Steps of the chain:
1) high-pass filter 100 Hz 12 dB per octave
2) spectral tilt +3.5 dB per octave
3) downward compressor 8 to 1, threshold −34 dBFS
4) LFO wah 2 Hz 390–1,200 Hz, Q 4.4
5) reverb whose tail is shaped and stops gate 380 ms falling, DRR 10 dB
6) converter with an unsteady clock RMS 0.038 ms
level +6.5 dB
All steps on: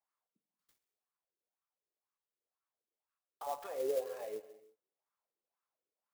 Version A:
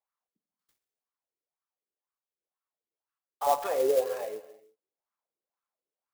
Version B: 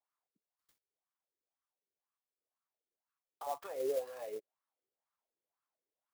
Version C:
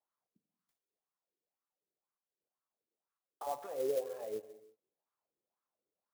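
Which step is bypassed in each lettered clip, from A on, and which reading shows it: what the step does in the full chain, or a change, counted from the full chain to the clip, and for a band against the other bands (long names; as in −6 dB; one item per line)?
3, average gain reduction 9.0 dB
5, change in momentary loudness spread −1 LU
2, change in momentary loudness spread −1 LU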